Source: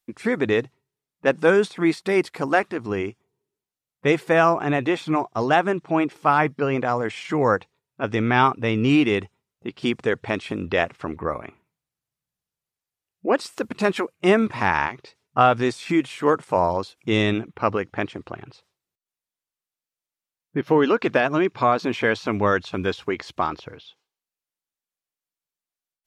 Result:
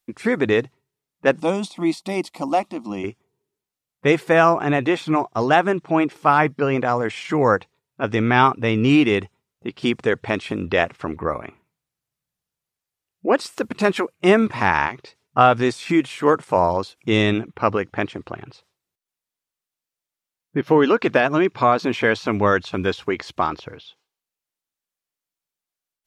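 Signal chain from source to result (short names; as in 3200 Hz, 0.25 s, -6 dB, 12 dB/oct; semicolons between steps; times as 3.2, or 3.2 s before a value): 1.4–3.04 fixed phaser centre 430 Hz, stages 6; gain +2.5 dB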